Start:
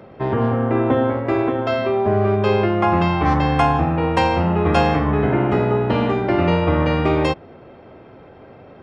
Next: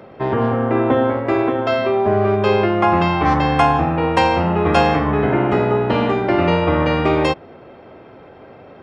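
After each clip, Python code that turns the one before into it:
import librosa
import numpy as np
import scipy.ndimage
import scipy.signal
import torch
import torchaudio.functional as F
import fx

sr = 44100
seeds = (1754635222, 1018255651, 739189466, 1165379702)

y = fx.low_shelf(x, sr, hz=200.0, db=-6.0)
y = y * 10.0 ** (3.0 / 20.0)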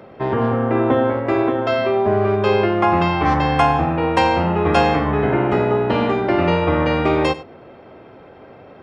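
y = x + 10.0 ** (-17.0 / 20.0) * np.pad(x, (int(94 * sr / 1000.0), 0))[:len(x)]
y = y * 10.0 ** (-1.0 / 20.0)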